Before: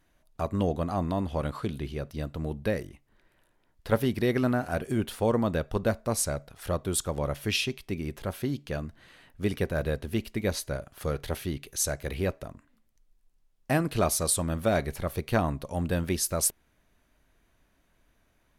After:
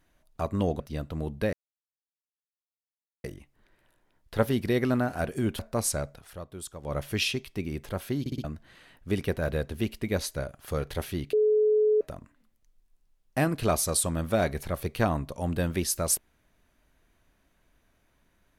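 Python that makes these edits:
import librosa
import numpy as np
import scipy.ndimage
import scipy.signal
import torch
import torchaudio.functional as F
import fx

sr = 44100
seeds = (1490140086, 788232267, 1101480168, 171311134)

y = fx.edit(x, sr, fx.cut(start_s=0.8, length_s=1.24),
    fx.insert_silence(at_s=2.77, length_s=1.71),
    fx.cut(start_s=5.12, length_s=0.8),
    fx.fade_down_up(start_s=6.53, length_s=0.76, db=-11.5, fade_s=0.14),
    fx.stutter_over(start_s=8.53, slice_s=0.06, count=4),
    fx.bleep(start_s=11.66, length_s=0.68, hz=427.0, db=-19.0), tone=tone)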